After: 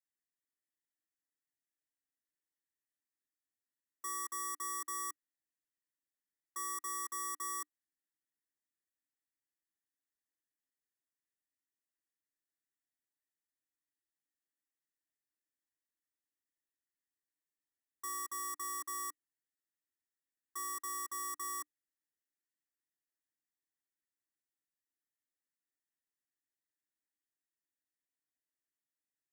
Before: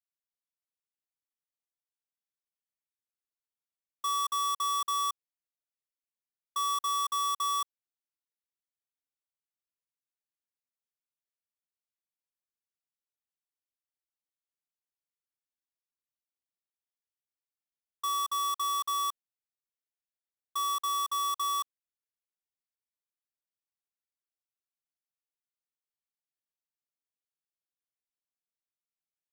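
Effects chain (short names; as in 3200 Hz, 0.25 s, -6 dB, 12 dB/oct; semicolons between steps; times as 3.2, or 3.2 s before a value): EQ curve 200 Hz 0 dB, 300 Hz +14 dB, 500 Hz -4 dB, 1200 Hz -6 dB, 1900 Hz +14 dB, 2700 Hz -26 dB, 5300 Hz -1 dB, 7600 Hz +6 dB, 12000 Hz +3 dB; gain -6.5 dB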